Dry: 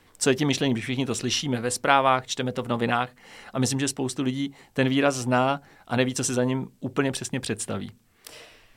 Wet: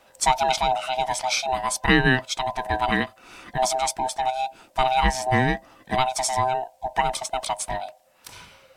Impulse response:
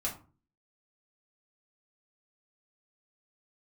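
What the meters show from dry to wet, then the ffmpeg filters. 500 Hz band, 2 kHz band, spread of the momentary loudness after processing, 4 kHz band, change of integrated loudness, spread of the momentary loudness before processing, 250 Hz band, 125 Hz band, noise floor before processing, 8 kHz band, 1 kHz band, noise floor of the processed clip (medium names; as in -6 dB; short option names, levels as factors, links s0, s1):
-1.0 dB, +4.5 dB, 9 LU, +1.5 dB, +1.5 dB, 10 LU, -4.5 dB, -2.0 dB, -59 dBFS, +1.0 dB, +6.0 dB, -57 dBFS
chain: -af "afftfilt=real='real(if(lt(b,1008),b+24*(1-2*mod(floor(b/24),2)),b),0)':imag='imag(if(lt(b,1008),b+24*(1-2*mod(floor(b/24),2)),b),0)':win_size=2048:overlap=0.75,volume=1.19"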